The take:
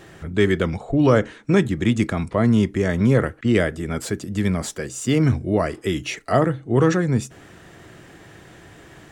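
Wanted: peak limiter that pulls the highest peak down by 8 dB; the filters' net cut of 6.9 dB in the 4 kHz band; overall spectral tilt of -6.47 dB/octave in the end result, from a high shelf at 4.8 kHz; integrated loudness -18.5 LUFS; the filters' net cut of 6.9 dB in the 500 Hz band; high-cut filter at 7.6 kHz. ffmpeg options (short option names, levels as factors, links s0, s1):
-af "lowpass=7600,equalizer=f=500:t=o:g=-9,equalizer=f=4000:t=o:g=-7.5,highshelf=f=4800:g=-4,volume=2.51,alimiter=limit=0.422:level=0:latency=1"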